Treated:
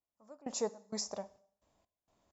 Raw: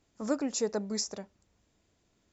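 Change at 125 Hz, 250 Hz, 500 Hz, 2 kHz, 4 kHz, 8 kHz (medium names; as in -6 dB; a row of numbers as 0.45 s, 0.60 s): -9.5 dB, -11.5 dB, -6.0 dB, -10.5 dB, -5.5 dB, no reading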